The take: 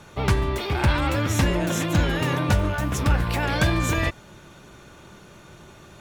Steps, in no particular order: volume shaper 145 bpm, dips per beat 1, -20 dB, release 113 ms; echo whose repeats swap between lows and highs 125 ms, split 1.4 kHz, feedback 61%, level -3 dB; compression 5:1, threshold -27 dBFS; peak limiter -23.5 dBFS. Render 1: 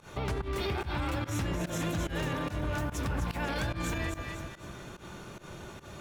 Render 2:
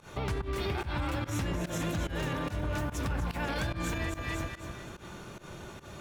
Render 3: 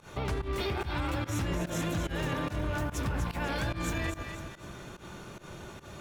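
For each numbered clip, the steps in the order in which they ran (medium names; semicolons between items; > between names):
compression > echo whose repeats swap between lows and highs > peak limiter > volume shaper; echo whose repeats swap between lows and highs > compression > peak limiter > volume shaper; peak limiter > echo whose repeats swap between lows and highs > compression > volume shaper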